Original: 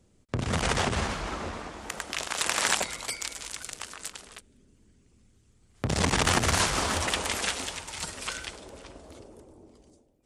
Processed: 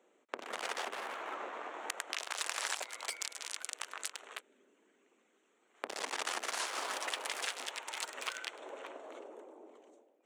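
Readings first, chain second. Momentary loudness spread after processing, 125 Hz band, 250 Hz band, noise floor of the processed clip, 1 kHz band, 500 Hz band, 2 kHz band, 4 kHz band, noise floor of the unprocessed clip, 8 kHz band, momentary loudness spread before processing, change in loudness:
13 LU, under -40 dB, -20.5 dB, -73 dBFS, -9.0 dB, -10.5 dB, -9.0 dB, -9.5 dB, -63 dBFS, -10.0 dB, 16 LU, -10.5 dB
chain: Wiener smoothing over 9 samples; in parallel at -9 dB: crossover distortion -41 dBFS; on the sum: compressor 4:1, threshold -42 dBFS, peak gain reduction 20.5 dB; Bessel high-pass 530 Hz, order 6; gain +5.5 dB

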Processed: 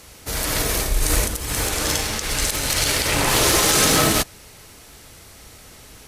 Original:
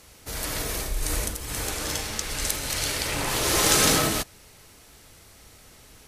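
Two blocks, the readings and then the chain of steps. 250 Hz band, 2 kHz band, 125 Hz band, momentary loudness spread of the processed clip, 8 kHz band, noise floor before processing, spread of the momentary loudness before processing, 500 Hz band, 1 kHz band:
+5.5 dB, +6.0 dB, +6.5 dB, 9 LU, +5.5 dB, -52 dBFS, 12 LU, +6.0 dB, +6.0 dB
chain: limiter -15 dBFS, peak gain reduction 10.5 dB; added harmonics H 7 -32 dB, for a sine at -15 dBFS; gain +8.5 dB

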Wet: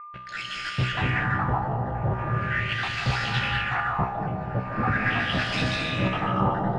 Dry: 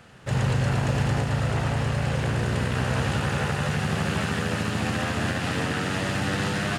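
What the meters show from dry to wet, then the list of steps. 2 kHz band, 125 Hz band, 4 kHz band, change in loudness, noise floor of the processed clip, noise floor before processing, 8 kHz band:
+3.0 dB, -3.0 dB, +1.5 dB, -0.5 dB, -37 dBFS, -29 dBFS, -11.0 dB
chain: random spectral dropouts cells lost 83%; bell 110 Hz +4 dB 0.58 oct; in parallel at -7.5 dB: fuzz box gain 43 dB, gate -45 dBFS; on the sum: low shelf 480 Hz +5 dB; resonator 63 Hz, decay 0.51 s, harmonics all, mix 80%; whine 1200 Hz -40 dBFS; thin delay 0.137 s, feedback 82%, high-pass 5400 Hz, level -7 dB; digital reverb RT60 2.9 s, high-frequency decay 0.85×, pre-delay 0.11 s, DRR -2 dB; LFO low-pass sine 0.4 Hz 720–4400 Hz; gain -2 dB

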